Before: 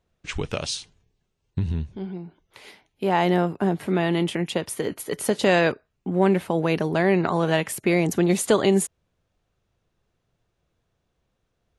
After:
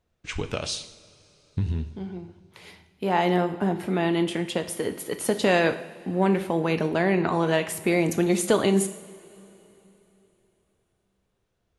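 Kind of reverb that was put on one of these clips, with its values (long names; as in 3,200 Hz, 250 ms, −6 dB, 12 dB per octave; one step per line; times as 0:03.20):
coupled-rooms reverb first 0.66 s, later 3.5 s, from −17 dB, DRR 8 dB
level −2 dB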